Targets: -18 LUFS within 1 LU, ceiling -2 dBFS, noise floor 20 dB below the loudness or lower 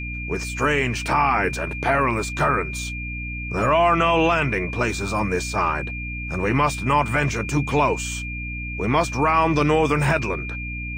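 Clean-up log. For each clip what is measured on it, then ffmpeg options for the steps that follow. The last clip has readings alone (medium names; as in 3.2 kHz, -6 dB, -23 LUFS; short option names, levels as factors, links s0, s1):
hum 60 Hz; highest harmonic 300 Hz; hum level -29 dBFS; steady tone 2.4 kHz; tone level -31 dBFS; loudness -21.5 LUFS; peak level -7.5 dBFS; loudness target -18.0 LUFS
-> -af "bandreject=f=60:t=h:w=4,bandreject=f=120:t=h:w=4,bandreject=f=180:t=h:w=4,bandreject=f=240:t=h:w=4,bandreject=f=300:t=h:w=4"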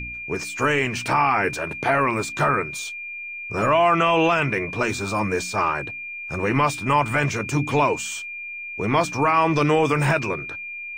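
hum not found; steady tone 2.4 kHz; tone level -31 dBFS
-> -af "bandreject=f=2400:w=30"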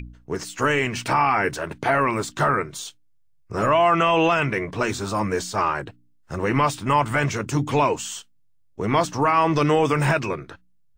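steady tone not found; loudness -22.0 LUFS; peak level -8.0 dBFS; loudness target -18.0 LUFS
-> -af "volume=1.58"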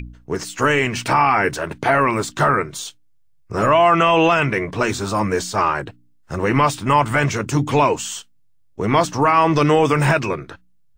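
loudness -18.0 LUFS; peak level -4.0 dBFS; noise floor -53 dBFS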